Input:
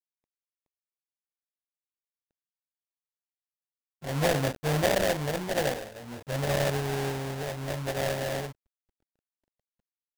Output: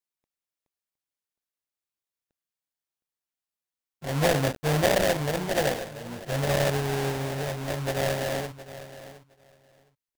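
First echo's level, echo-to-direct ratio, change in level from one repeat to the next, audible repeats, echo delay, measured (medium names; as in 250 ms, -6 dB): -15.0 dB, -15.0 dB, -16.5 dB, 2, 714 ms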